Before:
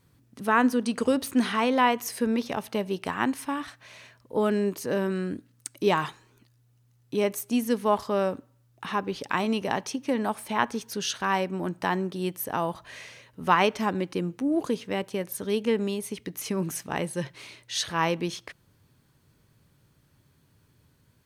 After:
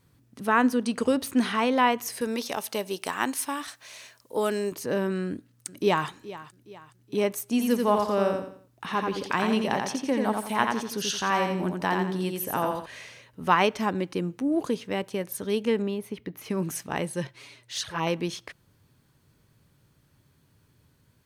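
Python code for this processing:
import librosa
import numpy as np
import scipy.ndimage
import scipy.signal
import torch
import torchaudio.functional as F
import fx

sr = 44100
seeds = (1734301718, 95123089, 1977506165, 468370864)

y = fx.bass_treble(x, sr, bass_db=-10, treble_db=11, at=(2.21, 4.72))
y = fx.echo_throw(y, sr, start_s=5.26, length_s=0.82, ms=420, feedback_pct=45, wet_db=-16.5)
y = fx.echo_feedback(y, sr, ms=86, feedback_pct=35, wet_db=-4.0, at=(7.45, 12.86))
y = fx.peak_eq(y, sr, hz=7600.0, db=-14.5, octaves=1.7, at=(15.82, 16.5))
y = fx.env_flanger(y, sr, rest_ms=10.4, full_db=-22.0, at=(17.27, 18.07))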